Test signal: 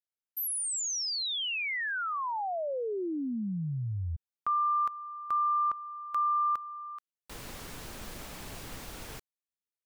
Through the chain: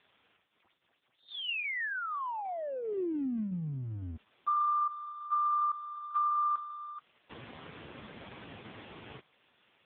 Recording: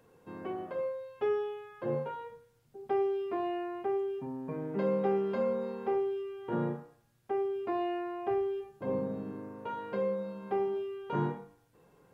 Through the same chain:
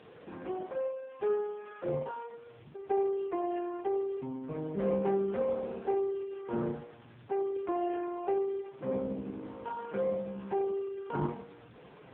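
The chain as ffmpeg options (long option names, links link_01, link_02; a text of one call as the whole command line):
ffmpeg -i in.wav -af "aeval=exprs='val(0)+0.5*0.00562*sgn(val(0))':channel_layout=same" -ar 8000 -c:a libopencore_amrnb -b:a 4750 out.amr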